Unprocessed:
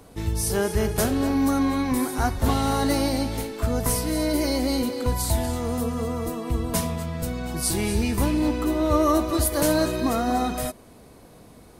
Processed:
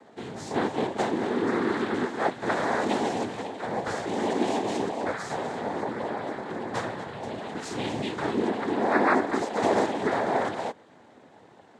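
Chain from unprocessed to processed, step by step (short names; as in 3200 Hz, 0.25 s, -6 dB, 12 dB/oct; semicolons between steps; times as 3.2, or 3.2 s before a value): three-band isolator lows -14 dB, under 270 Hz, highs -14 dB, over 3000 Hz; noise vocoder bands 6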